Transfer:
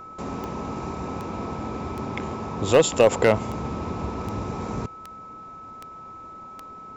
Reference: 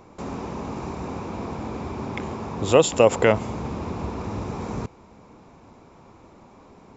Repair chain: clip repair -7.5 dBFS; de-click; band-stop 1.3 kHz, Q 30

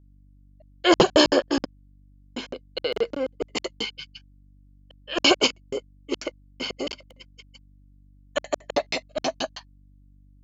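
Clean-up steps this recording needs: de-hum 48.6 Hz, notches 6

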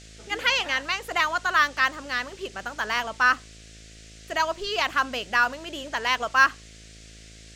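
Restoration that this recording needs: de-hum 54.4 Hz, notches 13; noise print and reduce 22 dB

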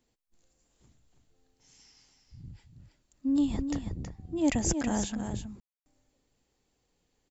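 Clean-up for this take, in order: room tone fill 5.60–5.86 s; inverse comb 322 ms -7.5 dB

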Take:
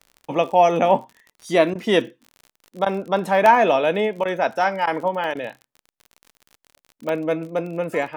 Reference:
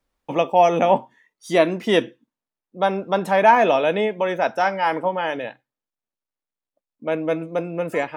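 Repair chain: de-click; interpolate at 1.04/3.46/5.24/6.44/7.09 s, 1.4 ms; interpolate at 1.13/1.74/2.85/4.24/4.86/5.34 s, 11 ms

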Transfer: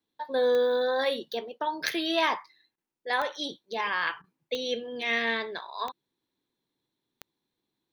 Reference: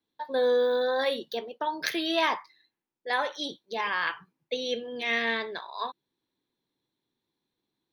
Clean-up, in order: de-click; interpolate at 2.76/4.22 s, 18 ms

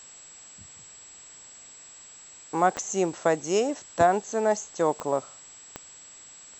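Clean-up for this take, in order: de-click; band-stop 7.7 kHz, Q 30; noise reduction 23 dB, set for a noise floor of -48 dBFS

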